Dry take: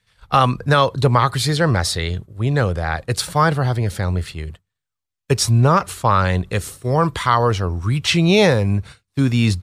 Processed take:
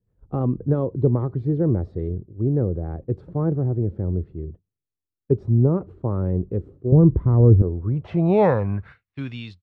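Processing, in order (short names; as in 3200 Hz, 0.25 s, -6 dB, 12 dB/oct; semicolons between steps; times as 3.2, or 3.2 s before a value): ending faded out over 1.15 s; 6.92–7.62 RIAA curve playback; low-pass sweep 350 Hz -> 3500 Hz, 7.6–9.44; gain -4.5 dB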